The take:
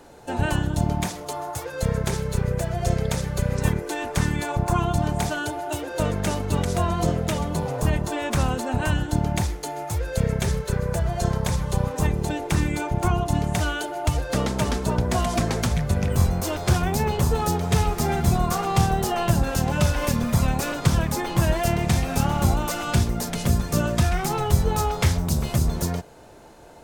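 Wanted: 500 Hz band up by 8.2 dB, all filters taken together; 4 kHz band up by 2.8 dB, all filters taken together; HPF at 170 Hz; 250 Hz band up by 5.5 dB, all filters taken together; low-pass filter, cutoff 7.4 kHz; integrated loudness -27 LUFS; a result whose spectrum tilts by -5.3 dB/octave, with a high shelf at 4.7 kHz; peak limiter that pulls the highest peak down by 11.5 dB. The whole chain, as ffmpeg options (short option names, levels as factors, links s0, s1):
-af "highpass=170,lowpass=7400,equalizer=f=250:t=o:g=7.5,equalizer=f=500:t=o:g=8.5,equalizer=f=4000:t=o:g=8,highshelf=f=4700:g=-8.5,volume=0.794,alimiter=limit=0.126:level=0:latency=1"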